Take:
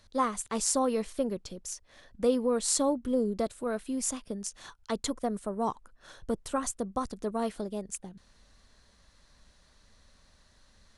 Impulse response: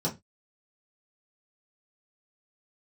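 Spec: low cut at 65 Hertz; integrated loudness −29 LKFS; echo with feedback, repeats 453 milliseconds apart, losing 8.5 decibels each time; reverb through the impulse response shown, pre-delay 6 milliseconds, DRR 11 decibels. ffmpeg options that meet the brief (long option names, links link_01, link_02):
-filter_complex "[0:a]highpass=65,aecho=1:1:453|906|1359|1812:0.376|0.143|0.0543|0.0206,asplit=2[link_01][link_02];[1:a]atrim=start_sample=2205,adelay=6[link_03];[link_02][link_03]afir=irnorm=-1:irlink=0,volume=-18dB[link_04];[link_01][link_04]amix=inputs=2:normalize=0,volume=0.5dB"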